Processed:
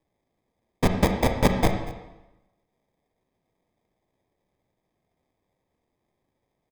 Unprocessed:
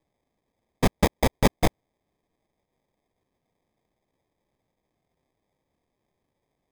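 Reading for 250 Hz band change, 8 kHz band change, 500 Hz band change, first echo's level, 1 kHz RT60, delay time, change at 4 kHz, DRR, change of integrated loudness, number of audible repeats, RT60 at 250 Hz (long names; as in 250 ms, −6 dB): +1.5 dB, −2.0 dB, +1.0 dB, −19.0 dB, 1.0 s, 237 ms, −1.0 dB, 5.0 dB, +1.0 dB, 1, 1.0 s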